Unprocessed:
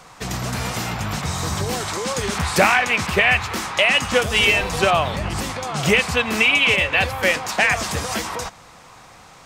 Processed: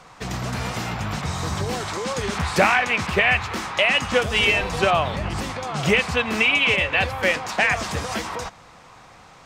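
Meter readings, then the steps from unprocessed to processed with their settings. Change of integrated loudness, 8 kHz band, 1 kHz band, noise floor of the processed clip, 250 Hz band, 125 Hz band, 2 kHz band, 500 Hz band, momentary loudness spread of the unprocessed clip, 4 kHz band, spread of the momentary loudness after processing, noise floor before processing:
-2.5 dB, -6.5 dB, -1.5 dB, -48 dBFS, -1.5 dB, -1.5 dB, -2.5 dB, -1.5 dB, 10 LU, -3.0 dB, 10 LU, -46 dBFS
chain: high shelf 7600 Hz -11 dB; gain -1.5 dB

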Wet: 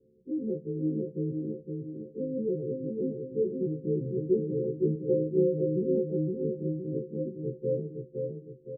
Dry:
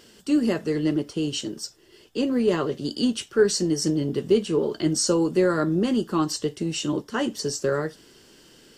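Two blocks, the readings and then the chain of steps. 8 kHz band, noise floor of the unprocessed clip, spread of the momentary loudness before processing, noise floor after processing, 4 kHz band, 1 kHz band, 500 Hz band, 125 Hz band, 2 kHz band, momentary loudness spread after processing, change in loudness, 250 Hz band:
under -40 dB, -54 dBFS, 7 LU, -54 dBFS, under -40 dB, under -40 dB, -4.5 dB, -2.5 dB, under -40 dB, 9 LU, -7.0 dB, -7.5 dB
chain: frequency quantiser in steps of 3 st; rippled Chebyshev low-pass 550 Hz, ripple 9 dB; feedback echo 0.514 s, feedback 47%, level -4 dB; gain -2.5 dB

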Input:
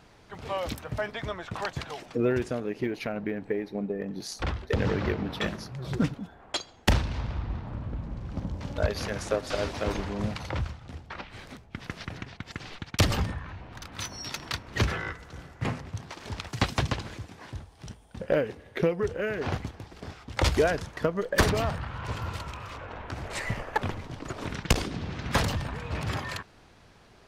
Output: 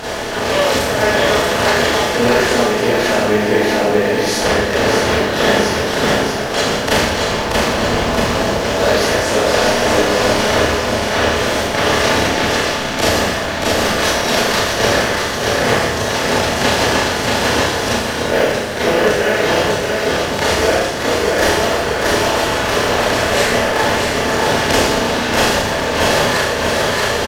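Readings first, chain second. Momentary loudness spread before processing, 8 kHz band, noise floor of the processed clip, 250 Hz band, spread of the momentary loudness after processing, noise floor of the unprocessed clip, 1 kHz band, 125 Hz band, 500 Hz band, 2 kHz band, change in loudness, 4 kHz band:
15 LU, +20.0 dB, -20 dBFS, +14.0 dB, 3 LU, -55 dBFS, +19.5 dB, +7.5 dB, +17.5 dB, +19.5 dB, +16.5 dB, +19.5 dB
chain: per-bin compression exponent 0.4; reverb removal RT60 1 s; tone controls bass -6 dB, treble 0 dB; in parallel at -11 dB: short-mantissa float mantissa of 2-bit; on the sum: low shelf 190 Hz -5 dB; on a send: feedback echo 0.632 s, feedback 45%, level -3.5 dB; on the sum: Schroeder reverb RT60 1.1 s, combs from 26 ms, DRR -10 dB; AGC; gain -1 dB

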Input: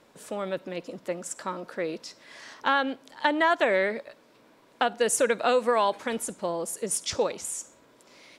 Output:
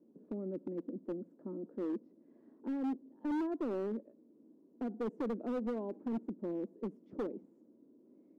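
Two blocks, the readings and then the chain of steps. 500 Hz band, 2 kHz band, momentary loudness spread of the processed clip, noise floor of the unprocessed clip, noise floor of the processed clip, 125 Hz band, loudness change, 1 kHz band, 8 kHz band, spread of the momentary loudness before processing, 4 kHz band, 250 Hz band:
-13.5 dB, -28.0 dB, 8 LU, -59 dBFS, -66 dBFS, n/a, -12.5 dB, -21.5 dB, under -40 dB, 14 LU, under -30 dB, -2.0 dB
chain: Butterworth band-pass 270 Hz, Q 1.7; hard clip -33.5 dBFS, distortion -10 dB; gain +1.5 dB

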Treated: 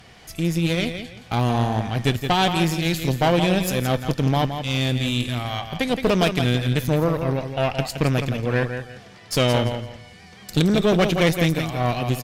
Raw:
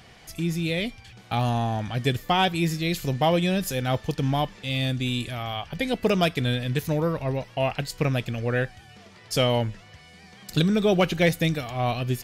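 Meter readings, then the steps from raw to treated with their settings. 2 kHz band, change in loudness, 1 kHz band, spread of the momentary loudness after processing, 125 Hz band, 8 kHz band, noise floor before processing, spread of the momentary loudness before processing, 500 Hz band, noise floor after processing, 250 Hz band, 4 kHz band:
+3.0 dB, +3.5 dB, +3.0 dB, 8 LU, +4.0 dB, +4.5 dB, -50 dBFS, 8 LU, +3.0 dB, -46 dBFS, +4.0 dB, +3.5 dB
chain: feedback echo 0.169 s, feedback 26%, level -8 dB; tube stage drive 19 dB, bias 0.75; gain +7 dB

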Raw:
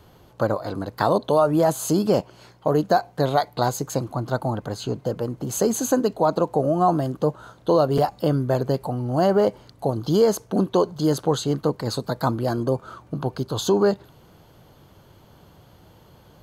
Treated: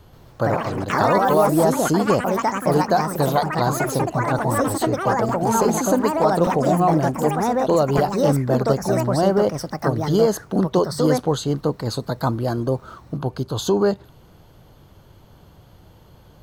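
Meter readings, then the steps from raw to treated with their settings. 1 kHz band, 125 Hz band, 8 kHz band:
+4.5 dB, +3.0 dB, +2.0 dB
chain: low shelf 69 Hz +11 dB; echoes that change speed 0.132 s, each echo +4 st, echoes 3

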